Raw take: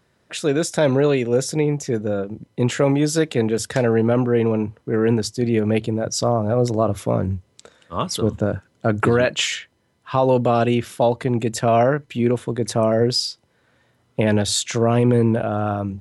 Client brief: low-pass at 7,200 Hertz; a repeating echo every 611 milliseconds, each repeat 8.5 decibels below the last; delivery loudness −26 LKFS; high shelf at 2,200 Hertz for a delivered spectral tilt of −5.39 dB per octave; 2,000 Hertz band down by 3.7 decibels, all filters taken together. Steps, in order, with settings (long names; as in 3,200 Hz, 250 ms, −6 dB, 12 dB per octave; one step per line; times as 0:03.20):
low-pass filter 7,200 Hz
parametric band 2,000 Hz −8 dB
high-shelf EQ 2,200 Hz +5 dB
repeating echo 611 ms, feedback 38%, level −8.5 dB
level −6 dB